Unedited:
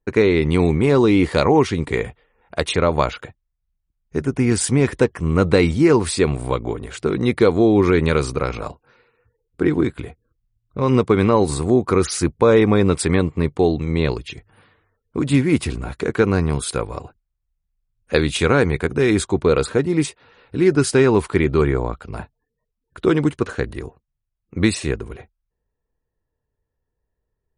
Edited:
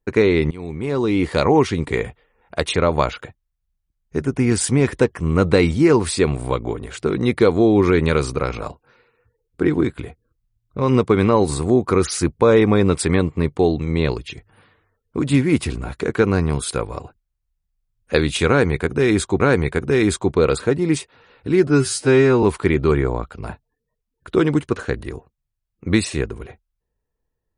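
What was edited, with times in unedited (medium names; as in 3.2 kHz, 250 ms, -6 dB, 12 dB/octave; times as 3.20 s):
0.51–1.52 s: fade in, from -22.5 dB
18.48–19.40 s: loop, 2 plays
20.75–21.13 s: stretch 2×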